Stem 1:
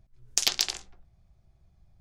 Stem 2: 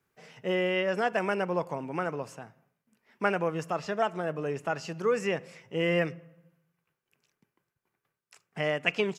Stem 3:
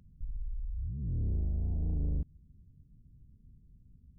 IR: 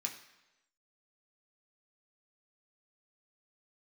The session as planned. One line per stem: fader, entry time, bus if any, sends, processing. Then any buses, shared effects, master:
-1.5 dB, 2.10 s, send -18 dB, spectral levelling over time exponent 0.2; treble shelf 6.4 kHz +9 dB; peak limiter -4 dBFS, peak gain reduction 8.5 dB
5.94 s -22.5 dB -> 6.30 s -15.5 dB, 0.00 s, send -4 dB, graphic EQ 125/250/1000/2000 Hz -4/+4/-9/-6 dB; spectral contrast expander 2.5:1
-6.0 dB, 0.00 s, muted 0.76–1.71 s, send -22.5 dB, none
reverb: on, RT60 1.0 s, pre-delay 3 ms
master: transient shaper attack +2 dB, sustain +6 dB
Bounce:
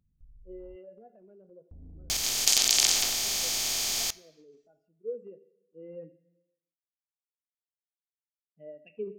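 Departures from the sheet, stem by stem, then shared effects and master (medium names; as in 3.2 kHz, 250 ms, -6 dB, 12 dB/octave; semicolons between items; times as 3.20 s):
stem 2 -22.5 dB -> -16.5 dB; stem 3 -6.0 dB -> -17.0 dB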